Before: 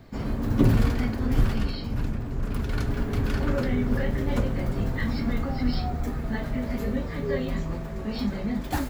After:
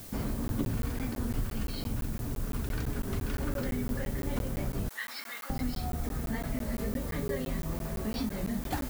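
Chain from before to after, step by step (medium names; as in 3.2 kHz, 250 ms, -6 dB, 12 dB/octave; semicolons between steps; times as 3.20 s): 4.89–5.50 s: high-pass 1.4 kHz 12 dB/octave; compression 4:1, threshold -30 dBFS, peak gain reduction 13.5 dB; added noise blue -48 dBFS; crackling interface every 0.17 s, samples 512, zero, from 0.48 s; warped record 33 1/3 rpm, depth 100 cents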